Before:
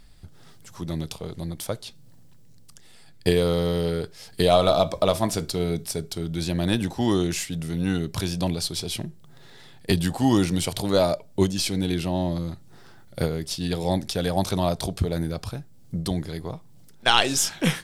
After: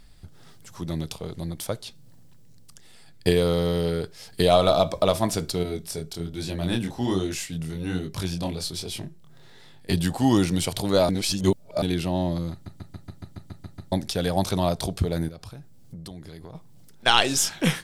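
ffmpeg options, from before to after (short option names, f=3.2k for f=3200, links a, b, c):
-filter_complex "[0:a]asettb=1/sr,asplit=3[a][b][c];[a]atrim=end=5.634[d];[b]atrim=start=5.63:end=9.94,asetpts=PTS-STARTPTS,afade=t=in:d=0.004:c=qsin,afade=t=out:st=4.306:d=0.004:c=qsin,flanger=delay=20:depth=5.9:speed=1.2[e];[c]atrim=start=9.936[f];[d][e]acrossfade=d=0.004:c1=hsin:c2=qsin[g];[g][f]acrossfade=d=0.004:c1=qsin:c2=hsin,asettb=1/sr,asplit=3[h][i][j];[h]atrim=end=15.284[k];[i]atrim=start=15.28:end=16.55,asetpts=PTS-STARTPTS,afade=t=in:d=0.004:c=qsin,afade=t=out:st=1.266:d=0.004:c=qsin,acompressor=threshold=-38dB:ratio=4:attack=3.2:release=140:knee=1:detection=peak[l];[j]atrim=start=16.546[m];[k][l]acrossfade=d=0.004:c1=hsin:c2=qsin[n];[n][m]acrossfade=d=0.004:c1=qsin:c2=hsin,asplit=13[o][p][q][r][s][t][u][v][w][x][y][z][aa];[o]atrim=end=11.092[ab];[p]atrim=start=11.088:end=11.822,asetpts=PTS-STARTPTS,areverse[ac];[q]atrim=start=11.818:end=12.662[ad];[r]atrim=start=12.518:end=12.662[ae];[s]atrim=start=12.518:end=12.662[af];[t]atrim=start=12.518:end=12.662[ag];[u]atrim=start=12.518:end=12.662[ah];[v]atrim=start=12.518:end=12.662[ai];[w]atrim=start=12.518:end=12.662[aj];[x]atrim=start=12.518:end=12.662[ak];[y]atrim=start=12.518:end=12.662[al];[z]atrim=start=12.518:end=12.662[am];[aa]atrim=start=13.918[an];[ab][ac]acrossfade=d=0.004:c1=hsin:c2=hsin[ao];[ao][ad]acrossfade=d=0.004:c1=hsin:c2=hsin[ap];[ap][ae]acrossfade=d=0.004:c1=hsin:c2=hsin[aq];[aq][af]acrossfade=d=0.004:c1=hsin:c2=hsin[ar];[ar][ag]acrossfade=d=0.004:c1=hsin:c2=hsin[as];[as][ah]acrossfade=d=0.004:c1=hsin:c2=hsin[at];[at][ai]acrossfade=d=0.004:c1=hsin:c2=hsin[au];[au][aj]acrossfade=d=0.004:c1=hsin:c2=hsin[av];[av][ak]acrossfade=d=0.004:c1=hsin:c2=hsin[aw];[aw][al]acrossfade=d=0.004:c1=hsin:c2=hsin[ax];[ax][am]acrossfade=d=0.004:c1=hsin:c2=hsin[ay];[ay][an]acrossfade=d=0.004:c1=hsin:c2=hsin"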